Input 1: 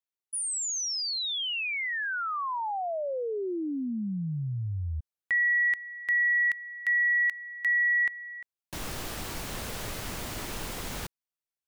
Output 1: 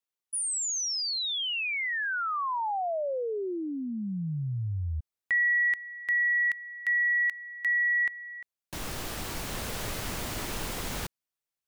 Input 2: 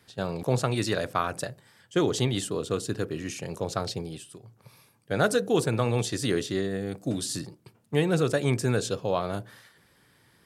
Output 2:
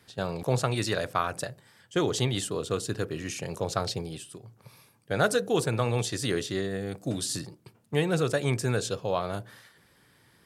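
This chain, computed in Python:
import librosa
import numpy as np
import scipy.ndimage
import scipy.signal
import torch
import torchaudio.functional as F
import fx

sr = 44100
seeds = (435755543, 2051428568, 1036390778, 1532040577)

p1 = fx.dynamic_eq(x, sr, hz=260.0, q=0.99, threshold_db=-39.0, ratio=4.0, max_db=-4)
p2 = fx.rider(p1, sr, range_db=3, speed_s=2.0)
p3 = p1 + F.gain(torch.from_numpy(p2), 2.0).numpy()
y = F.gain(torch.from_numpy(p3), -7.0).numpy()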